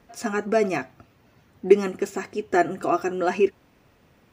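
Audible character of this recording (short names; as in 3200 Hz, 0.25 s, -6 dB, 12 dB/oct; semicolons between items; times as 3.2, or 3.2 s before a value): noise floor -60 dBFS; spectral tilt -2.0 dB/oct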